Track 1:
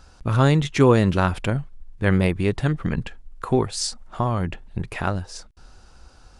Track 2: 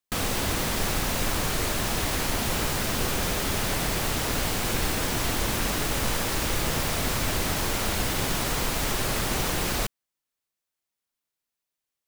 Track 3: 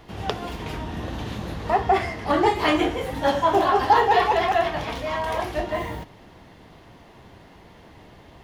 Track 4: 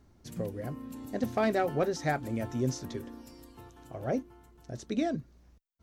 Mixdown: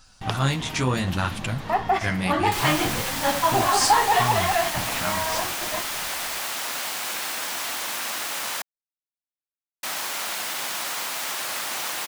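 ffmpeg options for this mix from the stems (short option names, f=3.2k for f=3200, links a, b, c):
-filter_complex "[0:a]highshelf=f=2.3k:g=11.5,flanger=delay=7.6:depth=9.7:regen=10:speed=0.71:shape=sinusoidal,volume=-3dB,asplit=2[a][b];[1:a]highpass=540,adelay=2400,volume=0.5dB,asplit=3[c][d][e];[c]atrim=end=8.62,asetpts=PTS-STARTPTS,afade=t=out:st=8.616:d=0.004:c=hsin[f];[d]atrim=start=8.62:end=9.83,asetpts=PTS-STARTPTS,volume=0[g];[e]atrim=start=9.83,asetpts=PTS-STARTPTS,afade=t=in:d=0.004:c=hsin[h];[f][g][h]concat=n=3:v=0:a=1[i];[2:a]highpass=120,volume=0dB[j];[3:a]acompressor=threshold=-31dB:ratio=6,crystalizer=i=8.5:c=0,adelay=50,volume=-16.5dB[k];[b]apad=whole_len=372068[l];[j][l]sidechaingate=range=-33dB:threshold=-49dB:ratio=16:detection=peak[m];[a][i][m][k]amix=inputs=4:normalize=0,equalizer=f=430:t=o:w=0.89:g=-8.5"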